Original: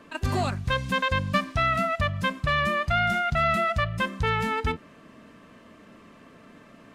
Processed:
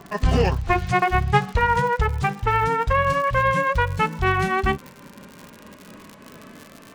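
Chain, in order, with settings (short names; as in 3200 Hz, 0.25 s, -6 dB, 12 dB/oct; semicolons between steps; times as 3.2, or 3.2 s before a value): gliding pitch shift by -7.5 st ending unshifted; vocal rider 2 s; crackle 96/s -35 dBFS; gain +6 dB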